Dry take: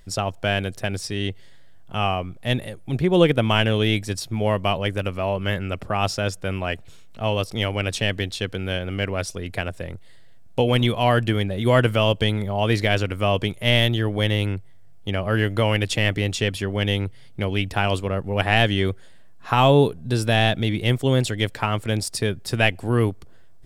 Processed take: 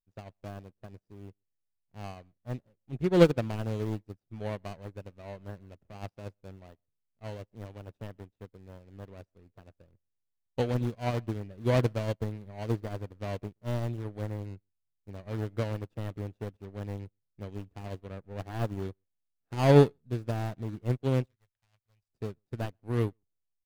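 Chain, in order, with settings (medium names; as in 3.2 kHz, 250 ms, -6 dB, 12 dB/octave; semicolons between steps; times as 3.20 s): median filter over 41 samples; 21.25–22.09 s: amplifier tone stack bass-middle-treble 10-0-10; echo from a far wall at 22 m, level -22 dB; upward expansion 2.5:1, over -43 dBFS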